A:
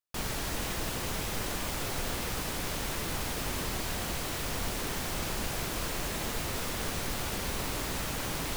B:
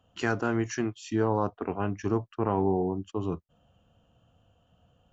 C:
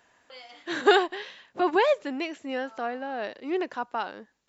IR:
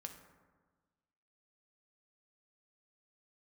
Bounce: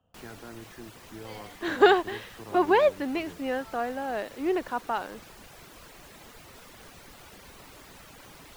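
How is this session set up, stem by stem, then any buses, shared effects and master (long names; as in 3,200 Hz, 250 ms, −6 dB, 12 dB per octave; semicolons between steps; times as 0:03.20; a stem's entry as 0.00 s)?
−10.5 dB, 0.00 s, no send, reverb reduction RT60 0.72 s; spectral tilt +1.5 dB per octave
−18.5 dB, 0.00 s, send −8 dB, multiband upward and downward compressor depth 40%
+1.5 dB, 0.95 s, no send, no processing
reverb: on, RT60 1.4 s, pre-delay 3 ms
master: high-shelf EQ 3,500 Hz −9.5 dB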